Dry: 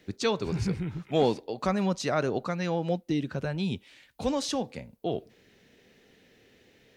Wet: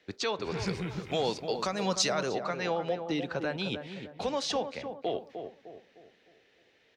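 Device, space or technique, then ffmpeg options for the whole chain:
DJ mixer with the lows and highs turned down: -filter_complex "[0:a]acrossover=split=420 6100:gain=0.224 1 0.158[a][b][c];[a][b][c]amix=inputs=3:normalize=0,alimiter=level_in=2dB:limit=-24dB:level=0:latency=1:release=316,volume=-2dB,agate=range=-8dB:threshold=-57dB:ratio=16:detection=peak,asettb=1/sr,asplit=3[d][e][f];[d]atrim=end=0.674[g];[e]atrim=start=0.67:end=2.35,asetpts=PTS-STARTPTS,afade=t=in:d=0.004:c=qsin,afade=t=out:st=1.676:d=0.004:c=qsin,bass=f=250:g=5,treble=f=4k:g=14[h];[f]atrim=start=2.346[i];[g][h]acrossfade=d=0.004:c1=hsin:c2=qsin[j];[j][i]acrossfade=d=0.004:c1=qsin:c2=hsin,asplit=2[k][l];[l]adelay=304,lowpass=f=1.1k:p=1,volume=-7dB,asplit=2[m][n];[n]adelay=304,lowpass=f=1.1k:p=1,volume=0.44,asplit=2[o][p];[p]adelay=304,lowpass=f=1.1k:p=1,volume=0.44,asplit=2[q][r];[r]adelay=304,lowpass=f=1.1k:p=1,volume=0.44,asplit=2[s][t];[t]adelay=304,lowpass=f=1.1k:p=1,volume=0.44[u];[k][m][o][q][s][u]amix=inputs=6:normalize=0,volume=5dB"

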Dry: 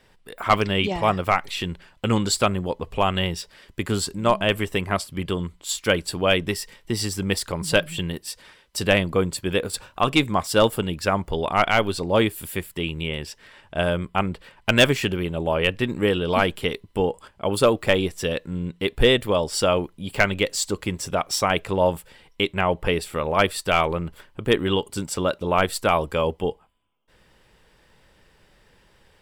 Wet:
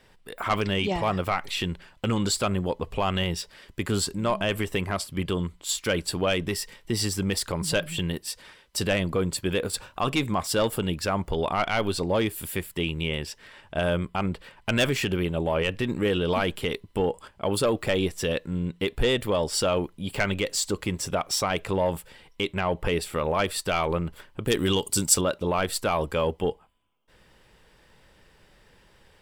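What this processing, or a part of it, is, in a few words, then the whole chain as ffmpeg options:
soft clipper into limiter: -filter_complex "[0:a]asoftclip=type=tanh:threshold=-9.5dB,alimiter=limit=-16dB:level=0:latency=1:release=49,asettb=1/sr,asplit=3[a][b][c];[a]atrim=end=24.474[d];[b]atrim=start=24.47:end=25.21,asetpts=PTS-STARTPTS,afade=t=in:d=0.004:c=qsin,afade=t=out:st=0.736:d=0.004:c=qsin,bass=f=250:g=2,treble=f=4k:g=13[e];[c]atrim=start=25.206[f];[d][e]acrossfade=d=0.004:c1=hsin:c2=qsin[g];[g][f]acrossfade=d=0.004:c1=qsin:c2=hsin"

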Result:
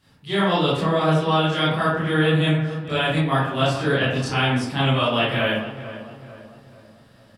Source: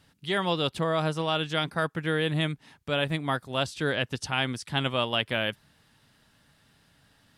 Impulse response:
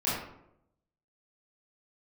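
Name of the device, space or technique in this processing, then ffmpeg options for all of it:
bathroom: -filter_complex "[1:a]atrim=start_sample=2205[a];[0:a][a]afir=irnorm=-1:irlink=0,asettb=1/sr,asplit=3[b][c][d];[b]atrim=end=2.474[e];[c]atrim=start=2.47:end=3.21,asetpts=PTS-STARTPTS,afade=t=in:d=0.004:c=qsin,afade=t=out:st=0.736:d=0.004:c=qsin,equalizer=f=6.7k:t=o:w=0.92:g=5[f];[d]atrim=start=3.206[g];[e][f]acrossfade=d=0.004:c1=hsin:c2=qsin[h];[h][g]acrossfade=d=0.004:c1=qsin:c2=hsin,asplit=2[i][j];[j]adelay=443,lowpass=f=1.7k:p=1,volume=-12.5dB,asplit=2[k][l];[l]adelay=443,lowpass=f=1.7k:p=1,volume=0.5,asplit=2[m][n];[n]adelay=443,lowpass=f=1.7k:p=1,volume=0.5,asplit=2[o][p];[p]adelay=443,lowpass=f=1.7k:p=1,volume=0.5,asplit=2[q][r];[r]adelay=443,lowpass=f=1.7k:p=1,volume=0.5[s];[i][k][m][o][q][s]amix=inputs=6:normalize=0,volume=-3dB"

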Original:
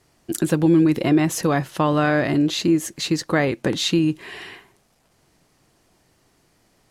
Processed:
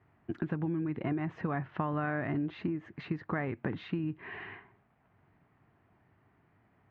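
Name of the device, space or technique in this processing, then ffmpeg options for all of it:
bass amplifier: -af "acompressor=threshold=-25dB:ratio=4,highpass=64,equalizer=f=100:t=q:w=4:g=7,equalizer=f=330:t=q:w=4:g=-4,equalizer=f=520:t=q:w=4:g=-9,lowpass=f=2.1k:w=0.5412,lowpass=f=2.1k:w=1.3066,volume=-4dB"

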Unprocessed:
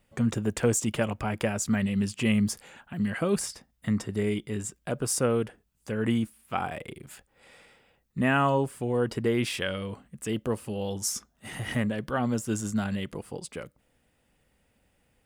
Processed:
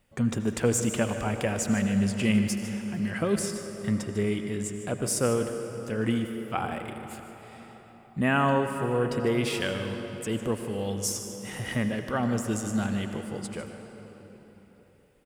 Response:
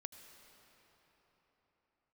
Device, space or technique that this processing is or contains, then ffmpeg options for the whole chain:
cave: -filter_complex "[0:a]aecho=1:1:151:0.2[a];[1:a]atrim=start_sample=2205[b];[a][b]afir=irnorm=-1:irlink=0,volume=5dB"

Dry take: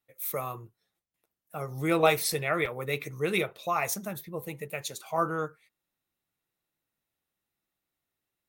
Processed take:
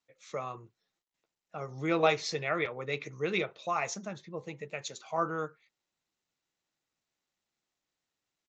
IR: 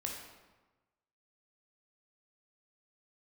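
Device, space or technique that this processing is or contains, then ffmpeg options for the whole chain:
Bluetooth headset: -af "highpass=130,aresample=16000,aresample=44100,volume=-3dB" -ar 16000 -c:a sbc -b:a 64k

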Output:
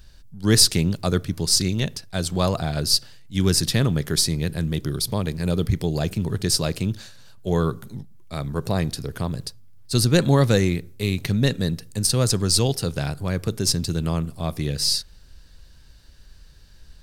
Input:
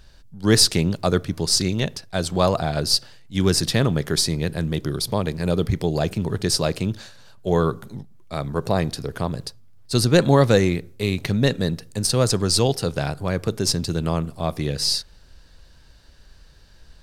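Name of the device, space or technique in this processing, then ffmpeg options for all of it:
smiley-face EQ: -af "lowshelf=f=170:g=3,equalizer=f=700:t=o:w=2:g=-4.5,highshelf=f=9.9k:g=7.5,volume=-1dB"

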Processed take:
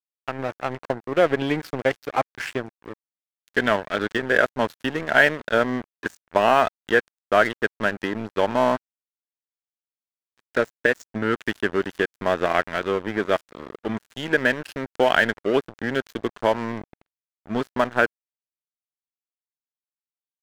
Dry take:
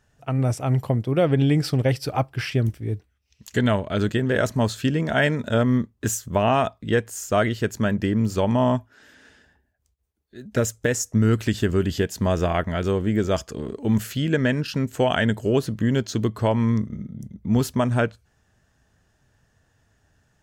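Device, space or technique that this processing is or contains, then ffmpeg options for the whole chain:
pocket radio on a weak battery: -af "highpass=340,lowpass=3.6k,aeval=exprs='sgn(val(0))*max(abs(val(0))-0.02,0)':c=same,equalizer=f=1.6k:t=o:w=0.55:g=5.5,volume=4dB"

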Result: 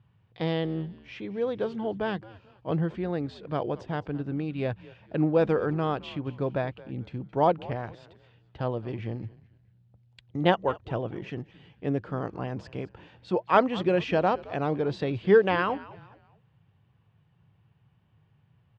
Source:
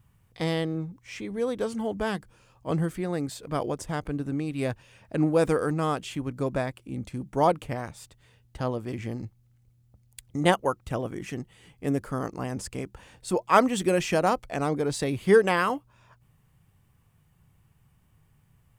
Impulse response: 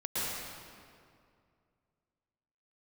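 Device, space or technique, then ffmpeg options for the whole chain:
frequency-shifting delay pedal into a guitar cabinet: -filter_complex "[0:a]asplit=4[a][b][c][d];[b]adelay=218,afreqshift=-100,volume=-19dB[e];[c]adelay=436,afreqshift=-200,volume=-28.1dB[f];[d]adelay=654,afreqshift=-300,volume=-37.2dB[g];[a][e][f][g]amix=inputs=4:normalize=0,highpass=99,equalizer=f=110:t=q:w=4:g=4,equalizer=f=250:t=q:w=4:g=-4,equalizer=f=1.2k:t=q:w=4:g=-4,equalizer=f=2.1k:t=q:w=4:g=-5,lowpass=f=3.7k:w=0.5412,lowpass=f=3.7k:w=1.3066"

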